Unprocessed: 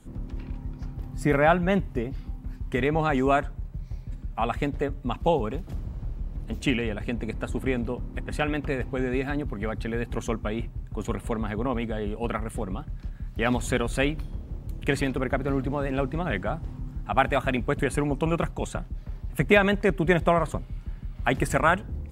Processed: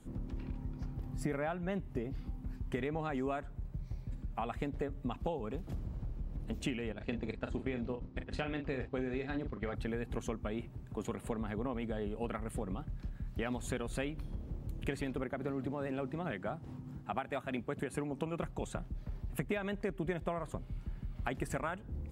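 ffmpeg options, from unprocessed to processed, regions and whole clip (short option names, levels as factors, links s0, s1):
-filter_complex "[0:a]asettb=1/sr,asplit=3[s0][s1][s2];[s0]atrim=end=6.924[s3];[s1]atrim=start=6.92:end=9.75,asetpts=PTS-STARTPTS,afade=t=in:d=0.004:c=qsin,afade=t=out:st=2.826:d=0.004:c=qsin,agate=range=0.282:threshold=0.0251:ratio=16:release=100:detection=peak,lowpass=f=4900:t=q:w=1.6,asplit=2[s4][s5];[s5]adelay=39,volume=0.355[s6];[s4][s6]amix=inputs=2:normalize=0,atrim=end_sample=124803[s7];[s2]atrim=start=9.746[s8];[s3][s7]acrossfade=d=0.004:c1=hsin:c2=qsin[s9];[s9][s8]acrossfade=d=0.004:c1=qsin:c2=hsin,asettb=1/sr,asplit=3[s10][s11][s12];[s10]atrim=end=10.584[s13];[s11]atrim=start=10.58:end=11.3,asetpts=PTS-STARTPTS,afade=t=in:d=0.004:c=qsin,afade=t=out:st=0.716:d=0.004:c=qsin,highpass=f=130:p=1,acompressor=mode=upward:threshold=0.01:ratio=2.5:attack=3.2:release=140:knee=2.83:detection=peak[s14];[s12]atrim=start=11.296[s15];[s13][s14]acrossfade=d=0.004:c1=hsin:c2=qsin[s16];[s16][s15]acrossfade=d=0.004:c1=qsin:c2=hsin,asettb=1/sr,asplit=3[s17][s18][s19];[s17]atrim=end=15.234[s20];[s18]atrim=start=15.23:end=18.39,asetpts=PTS-STARTPTS,afade=t=in:d=0.004:c=qsin,afade=t=out:st=3.156:d=0.004:c=qsin,highpass=110,tremolo=f=4.7:d=0.37[s21];[s19]atrim=start=18.386[s22];[s20][s21]acrossfade=d=0.004:c1=hsin:c2=qsin[s23];[s23][s22]acrossfade=d=0.004:c1=qsin:c2=hsin,acompressor=threshold=0.0316:ratio=6,equalizer=f=300:w=0.5:g=3,volume=0.531"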